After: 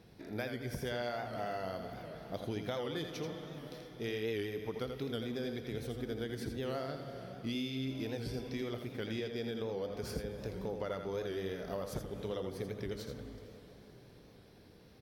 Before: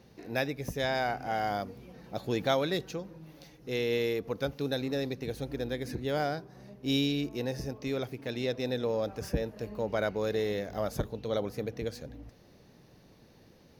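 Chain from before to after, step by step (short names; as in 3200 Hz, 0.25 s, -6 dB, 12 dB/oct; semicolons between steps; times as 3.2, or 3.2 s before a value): speed mistake 48 kHz file played as 44.1 kHz; plate-style reverb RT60 4.4 s, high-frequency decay 0.95×, DRR 11.5 dB; compressor 10:1, threshold -33 dBFS, peak gain reduction 11.5 dB; on a send: echo 83 ms -7 dB; on the sum: record warp 78 rpm, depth 100 cents; gain -2 dB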